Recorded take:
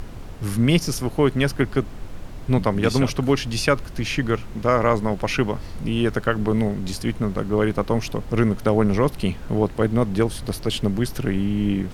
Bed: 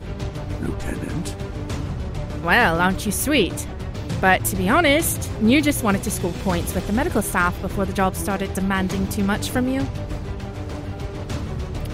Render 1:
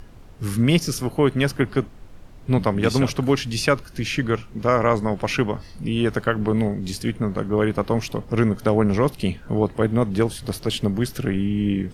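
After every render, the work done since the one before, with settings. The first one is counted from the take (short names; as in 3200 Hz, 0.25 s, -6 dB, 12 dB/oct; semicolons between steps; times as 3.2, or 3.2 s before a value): noise print and reduce 9 dB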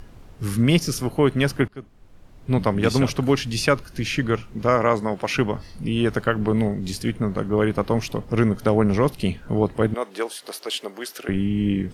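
1.68–2.69 fade in, from -22.5 dB; 4.75–5.34 HPF 110 Hz -> 310 Hz 6 dB/oct; 9.94–11.29 Bessel high-pass 550 Hz, order 4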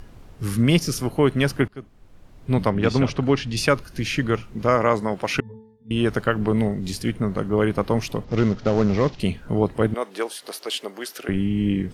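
2.7–3.57 air absorption 100 m; 5.4–5.91 octave resonator A, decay 0.73 s; 8.24–9.2 CVSD 32 kbps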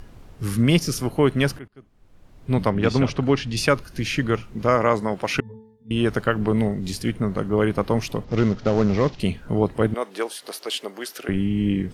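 1.59–2.82 fade in equal-power, from -22 dB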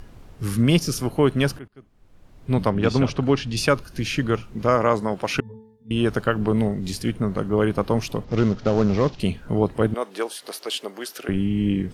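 dynamic EQ 2000 Hz, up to -5 dB, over -46 dBFS, Q 4.7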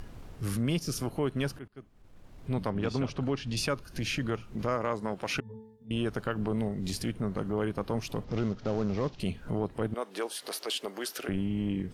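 transient shaper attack -6 dB, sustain -2 dB; compressor 2.5:1, threshold -31 dBFS, peak gain reduction 11 dB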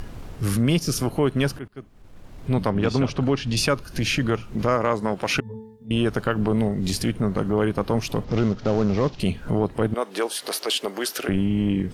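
gain +9 dB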